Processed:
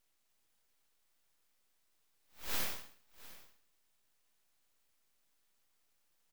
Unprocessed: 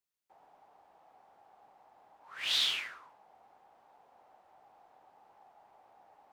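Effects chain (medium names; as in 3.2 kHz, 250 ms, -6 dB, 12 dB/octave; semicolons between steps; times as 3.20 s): inverse Chebyshev high-pass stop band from 1.9 kHz, stop band 70 dB; full-wave rectifier; on a send: delay 703 ms -18.5 dB; on the sum: trim +16 dB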